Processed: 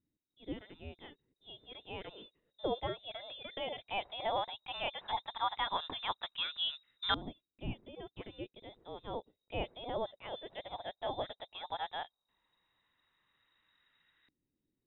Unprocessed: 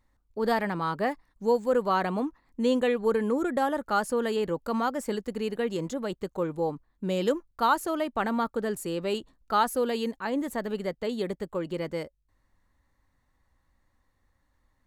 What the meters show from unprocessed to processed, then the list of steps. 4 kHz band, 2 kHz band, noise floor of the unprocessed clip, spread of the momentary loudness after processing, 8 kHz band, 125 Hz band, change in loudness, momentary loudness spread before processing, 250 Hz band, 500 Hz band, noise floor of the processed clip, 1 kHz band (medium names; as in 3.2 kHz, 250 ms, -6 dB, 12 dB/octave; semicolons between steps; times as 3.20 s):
+2.0 dB, -9.5 dB, -72 dBFS, 15 LU, under -35 dB, -11.0 dB, -11.0 dB, 8 LU, -19.5 dB, -15.0 dB, under -85 dBFS, -10.0 dB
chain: frequency inversion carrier 3.8 kHz; LFO low-pass saw up 0.14 Hz 280–1500 Hz; trim +6.5 dB